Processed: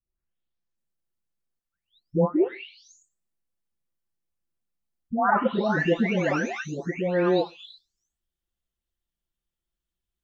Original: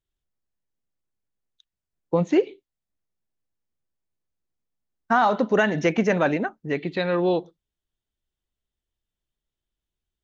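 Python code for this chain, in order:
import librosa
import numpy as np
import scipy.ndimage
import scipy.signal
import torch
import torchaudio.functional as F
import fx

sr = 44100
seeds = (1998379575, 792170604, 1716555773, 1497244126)

y = fx.spec_delay(x, sr, highs='late', ms=777)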